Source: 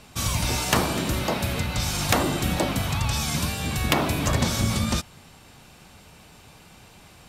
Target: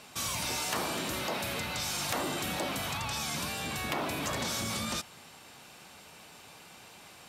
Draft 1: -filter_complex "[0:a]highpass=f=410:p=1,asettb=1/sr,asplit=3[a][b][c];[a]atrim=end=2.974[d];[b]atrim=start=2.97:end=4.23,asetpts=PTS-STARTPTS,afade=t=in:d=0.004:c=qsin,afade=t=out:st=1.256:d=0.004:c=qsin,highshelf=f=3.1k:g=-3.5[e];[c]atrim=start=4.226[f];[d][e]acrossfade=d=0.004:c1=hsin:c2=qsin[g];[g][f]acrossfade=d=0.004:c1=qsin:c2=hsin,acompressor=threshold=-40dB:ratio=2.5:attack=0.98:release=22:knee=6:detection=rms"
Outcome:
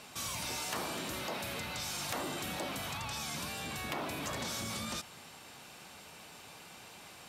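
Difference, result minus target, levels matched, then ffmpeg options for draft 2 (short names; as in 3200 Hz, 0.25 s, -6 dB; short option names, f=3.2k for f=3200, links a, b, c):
compressor: peak gain reduction +5 dB
-filter_complex "[0:a]highpass=f=410:p=1,asettb=1/sr,asplit=3[a][b][c];[a]atrim=end=2.974[d];[b]atrim=start=2.97:end=4.23,asetpts=PTS-STARTPTS,afade=t=in:d=0.004:c=qsin,afade=t=out:st=1.256:d=0.004:c=qsin,highshelf=f=3.1k:g=-3.5[e];[c]atrim=start=4.226[f];[d][e]acrossfade=d=0.004:c1=hsin:c2=qsin[g];[g][f]acrossfade=d=0.004:c1=qsin:c2=hsin,acompressor=threshold=-32dB:ratio=2.5:attack=0.98:release=22:knee=6:detection=rms"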